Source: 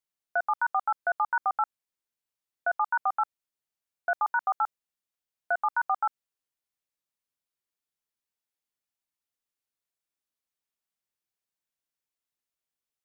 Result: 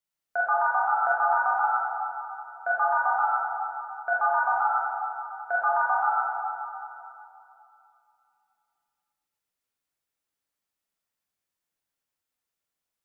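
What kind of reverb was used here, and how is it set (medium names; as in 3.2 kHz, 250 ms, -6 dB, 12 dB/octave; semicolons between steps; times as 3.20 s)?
plate-style reverb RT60 2.8 s, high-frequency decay 0.5×, DRR -5.5 dB; trim -1.5 dB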